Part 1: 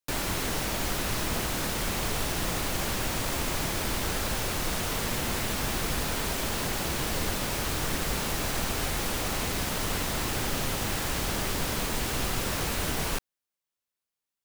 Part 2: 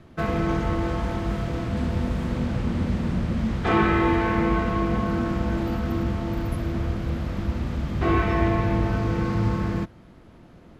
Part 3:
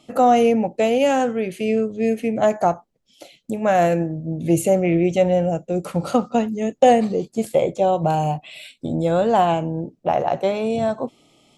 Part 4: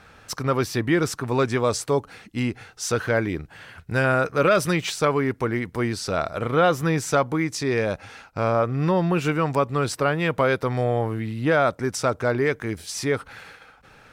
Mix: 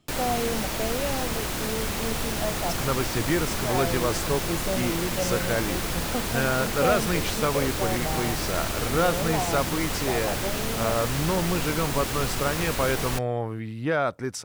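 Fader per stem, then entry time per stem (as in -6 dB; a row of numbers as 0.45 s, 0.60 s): +0.5 dB, -18.5 dB, -13.0 dB, -5.0 dB; 0.00 s, 0.00 s, 0.00 s, 2.40 s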